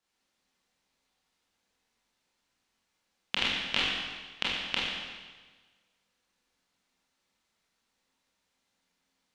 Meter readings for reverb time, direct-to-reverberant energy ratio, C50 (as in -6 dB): 1.4 s, -7.0 dB, -1.0 dB